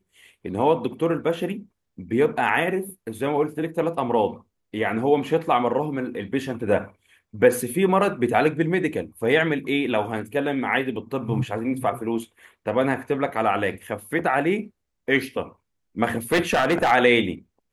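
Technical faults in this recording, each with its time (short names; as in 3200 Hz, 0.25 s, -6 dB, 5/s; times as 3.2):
16.32–16.92 clipped -15 dBFS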